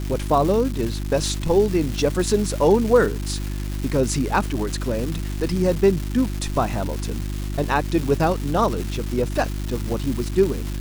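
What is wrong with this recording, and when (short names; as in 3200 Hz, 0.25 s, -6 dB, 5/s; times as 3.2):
crackle 590/s -26 dBFS
hum 50 Hz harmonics 7 -27 dBFS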